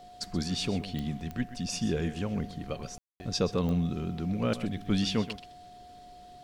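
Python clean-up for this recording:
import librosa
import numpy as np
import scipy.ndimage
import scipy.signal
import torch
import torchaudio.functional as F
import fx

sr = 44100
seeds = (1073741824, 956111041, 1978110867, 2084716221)

y = fx.fix_declick_ar(x, sr, threshold=10.0)
y = fx.notch(y, sr, hz=720.0, q=30.0)
y = fx.fix_ambience(y, sr, seeds[0], print_start_s=5.82, print_end_s=6.32, start_s=2.98, end_s=3.2)
y = fx.fix_echo_inverse(y, sr, delay_ms=128, level_db=-14.0)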